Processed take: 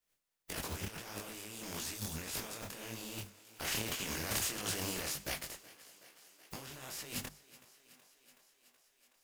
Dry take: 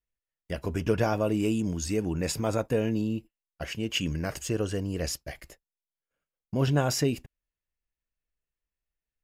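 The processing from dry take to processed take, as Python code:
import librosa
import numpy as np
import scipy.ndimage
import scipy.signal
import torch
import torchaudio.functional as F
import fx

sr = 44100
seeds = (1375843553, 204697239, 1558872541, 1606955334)

y = fx.spec_flatten(x, sr, power=0.35)
y = fx.hum_notches(y, sr, base_hz=50, count=5)
y = fx.spec_box(y, sr, start_s=1.94, length_s=0.23, low_hz=270.0, high_hz=3300.0, gain_db=-10)
y = fx.over_compress(y, sr, threshold_db=-39.0, ratio=-1.0)
y = fx.echo_thinned(y, sr, ms=374, feedback_pct=75, hz=190.0, wet_db=-18.5)
y = fx.leveller(y, sr, passes=1, at=(3.71, 5.13))
y = fx.detune_double(y, sr, cents=59)
y = y * 10.0 ** (-1.0 / 20.0)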